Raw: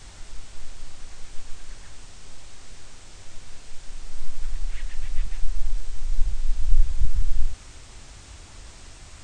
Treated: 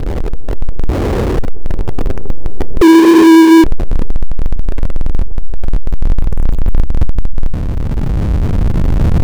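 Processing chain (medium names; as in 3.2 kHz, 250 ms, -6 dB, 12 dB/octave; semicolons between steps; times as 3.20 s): recorder AGC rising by 12 dB/s; 0.89–1.39 s: high-pass 46 Hz 24 dB/octave; in parallel at -3 dB: peak limiter -12 dBFS, peak gain reduction 9.5 dB; 2.81–3.64 s: on the sum: frequency shift +320 Hz; low-pass sweep 420 Hz -> 180 Hz, 6.49–7.55 s; power-law waveshaper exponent 0.35; 6.21–6.81 s: small samples zeroed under -19 dBFS; on a send at -24 dB: distance through air 55 m + reverberation, pre-delay 3 ms; on the sum: trim -2 dB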